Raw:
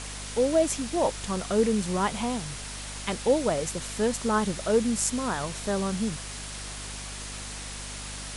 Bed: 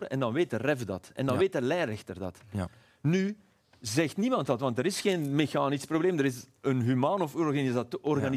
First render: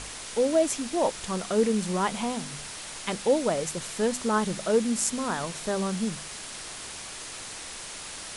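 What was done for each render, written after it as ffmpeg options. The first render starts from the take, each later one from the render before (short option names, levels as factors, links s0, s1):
-af "bandreject=f=50:t=h:w=4,bandreject=f=100:t=h:w=4,bandreject=f=150:t=h:w=4,bandreject=f=200:t=h:w=4,bandreject=f=250:t=h:w=4"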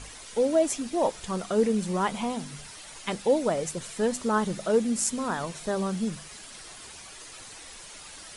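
-af "afftdn=nr=9:nf=-40"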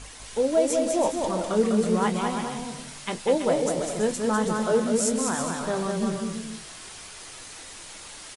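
-filter_complex "[0:a]asplit=2[s0][s1];[s1]adelay=23,volume=0.299[s2];[s0][s2]amix=inputs=2:normalize=0,asplit=2[s3][s4];[s4]aecho=0:1:200|330|414.5|469.4|505.1:0.631|0.398|0.251|0.158|0.1[s5];[s3][s5]amix=inputs=2:normalize=0"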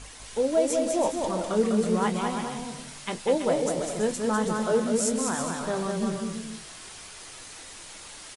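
-af "volume=0.841"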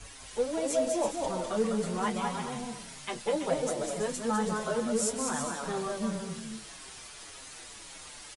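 -filter_complex "[0:a]acrossover=split=190|440|2100[s0][s1][s2][s3];[s1]asoftclip=type=tanh:threshold=0.0168[s4];[s0][s4][s2][s3]amix=inputs=4:normalize=0,asplit=2[s5][s6];[s6]adelay=6.6,afreqshift=-1.8[s7];[s5][s7]amix=inputs=2:normalize=1"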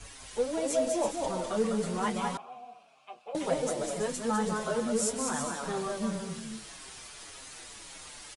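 -filter_complex "[0:a]asettb=1/sr,asplit=3[s0][s1][s2];[s0]atrim=end=2.374[s3];[s1]atrim=start=2.37:end=3.35,asetpts=PTS-STARTPTS,afade=t=in:d=0.004:c=qsin,afade=t=out:st=0.976:d=0.004:c=qsin,asplit=3[s4][s5][s6];[s4]bandpass=f=730:t=q:w=8,volume=1[s7];[s5]bandpass=f=1090:t=q:w=8,volume=0.501[s8];[s6]bandpass=f=2440:t=q:w=8,volume=0.355[s9];[s7][s8][s9]amix=inputs=3:normalize=0[s10];[s2]atrim=start=3.346[s11];[s3][s10]acrossfade=d=0.004:c1=hsin:c2=qsin[s12];[s12][s11]acrossfade=d=0.004:c1=qsin:c2=hsin"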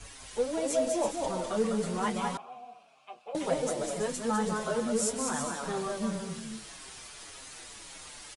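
-af anull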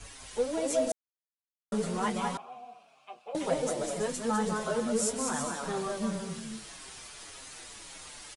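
-filter_complex "[0:a]asplit=3[s0][s1][s2];[s0]atrim=end=0.92,asetpts=PTS-STARTPTS,afade=t=out:st=0.916:d=0.004:c=hsin[s3];[s1]atrim=start=0.92:end=1.72,asetpts=PTS-STARTPTS,volume=0[s4];[s2]atrim=start=1.72,asetpts=PTS-STARTPTS,afade=t=in:d=0.004:c=hsin[s5];[s3][s4][s5]concat=n=3:v=0:a=1"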